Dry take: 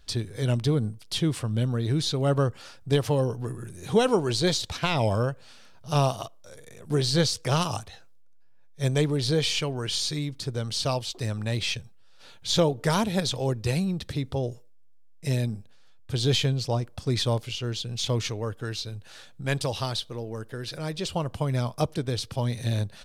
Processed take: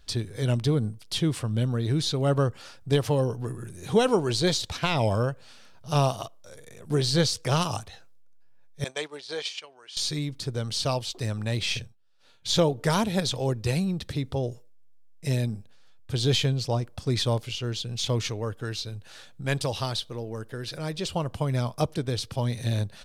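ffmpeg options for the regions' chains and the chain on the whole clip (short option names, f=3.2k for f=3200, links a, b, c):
-filter_complex "[0:a]asettb=1/sr,asplit=3[a][b][c];[a]atrim=end=8.844[d];[b]atrim=start=8.84:end=9.97,asetpts=PTS-STARTPTS,afade=t=in:d=0.004:c=qsin,afade=t=out:st=1.126:d=0.004:c=qsin,agate=range=-13dB:threshold=-26dB:ratio=16:release=100:detection=peak,highpass=700,lowpass=7.7k[e];[c]atrim=start=9.966[f];[d][e]acrossfade=d=0.004:c1=hsin:c2=qsin[g];[g][f]acrossfade=d=0.004:c1=qsin:c2=hsin,asettb=1/sr,asplit=3[h][i][j];[h]atrim=end=11.664[k];[i]atrim=start=11.66:end=12.48,asetpts=PTS-STARTPTS,afade=t=in:d=0.004:c=qsin,afade=t=out:st=0.816:d=0.004:c=qsin,agate=range=-33dB:threshold=-41dB:ratio=3:release=100:detection=peak,asplit=2[l][m];[m]adelay=48,volume=-6dB[n];[l][n]amix=inputs=2:normalize=0,atrim=end_sample=36162[o];[j]atrim=start=12.476[p];[k][o]acrossfade=d=0.004:c1=hsin:c2=qsin[q];[q][p]acrossfade=d=0.004:c1=qsin:c2=hsin"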